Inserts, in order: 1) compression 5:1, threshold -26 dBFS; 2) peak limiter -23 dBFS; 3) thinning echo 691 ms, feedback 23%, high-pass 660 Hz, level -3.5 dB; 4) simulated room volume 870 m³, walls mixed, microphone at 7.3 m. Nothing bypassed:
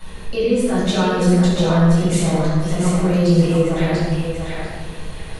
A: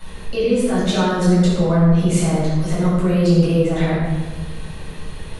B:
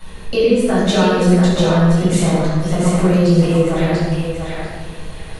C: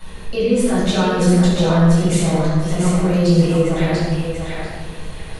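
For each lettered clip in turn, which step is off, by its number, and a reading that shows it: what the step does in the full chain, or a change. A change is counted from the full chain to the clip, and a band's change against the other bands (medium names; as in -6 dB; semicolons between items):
3, momentary loudness spread change +3 LU; 2, loudness change +2.5 LU; 1, mean gain reduction 4.0 dB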